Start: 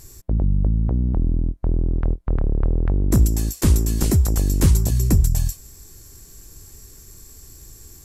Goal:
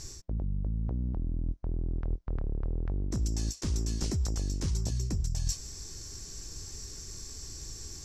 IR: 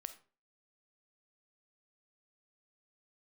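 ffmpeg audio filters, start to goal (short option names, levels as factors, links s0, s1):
-af "areverse,acompressor=threshold=0.0447:ratio=12,areverse,lowpass=f=5700:t=q:w=2.7"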